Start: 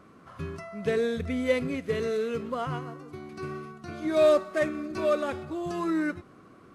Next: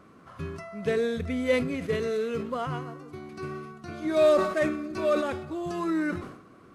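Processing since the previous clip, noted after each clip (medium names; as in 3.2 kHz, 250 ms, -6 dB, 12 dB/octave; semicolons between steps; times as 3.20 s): decay stretcher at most 74 dB/s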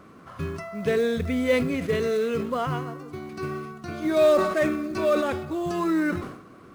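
in parallel at -3 dB: peak limiter -23.5 dBFS, peak gain reduction 11 dB; on the sum: short-mantissa float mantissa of 4-bit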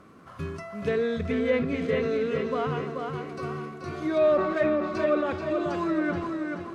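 tape echo 431 ms, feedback 47%, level -4 dB, low-pass 4.7 kHz; low-pass that closes with the level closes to 2.5 kHz, closed at -17 dBFS; trim -3 dB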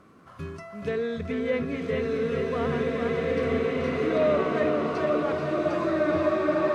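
swelling reverb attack 2230 ms, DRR -3 dB; trim -2.5 dB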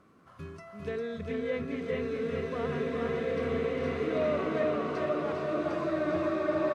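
delay 401 ms -5 dB; trim -6.5 dB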